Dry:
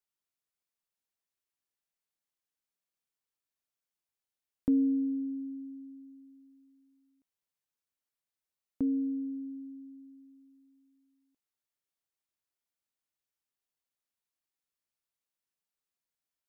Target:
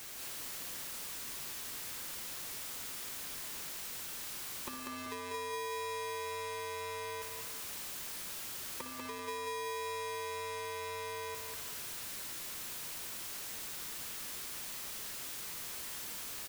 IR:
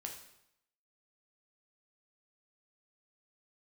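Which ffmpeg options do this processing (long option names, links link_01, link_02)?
-filter_complex "[0:a]aeval=exprs='val(0)+0.5*0.00631*sgn(val(0))':channel_layout=same,highpass=180,asplit=2[link_01][link_02];[1:a]atrim=start_sample=2205,adelay=56[link_03];[link_02][link_03]afir=irnorm=-1:irlink=0,volume=-5dB[link_04];[link_01][link_04]amix=inputs=2:normalize=0,dynaudnorm=framelen=160:gausssize=3:maxgain=8.5dB,afftfilt=real='re*lt(hypot(re,im),0.501)':imag='im*lt(hypot(re,im),0.501)':win_size=1024:overlap=0.75,adynamicequalizer=threshold=0.00316:dfrequency=400:dqfactor=1.1:tfrequency=400:tqfactor=1.1:attack=5:release=100:ratio=0.375:range=3:mode=cutabove:tftype=bell,acompressor=threshold=-47dB:ratio=20,aecho=1:1:192|384|576|768|960:0.631|0.246|0.096|0.0374|0.0146,aeval=exprs='val(0)*sgn(sin(2*PI*720*n/s))':channel_layout=same,volume=5.5dB"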